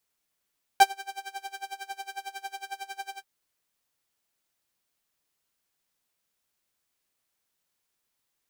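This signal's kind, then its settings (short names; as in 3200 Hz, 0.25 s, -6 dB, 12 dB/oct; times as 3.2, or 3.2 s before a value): synth patch with tremolo G5, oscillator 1 saw, sub -27 dB, filter highpass, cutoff 110 Hz, Q 2.3, filter sustain 50%, attack 1.7 ms, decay 0.09 s, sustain -21 dB, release 0.08 s, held 2.36 s, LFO 11 Hz, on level 23.5 dB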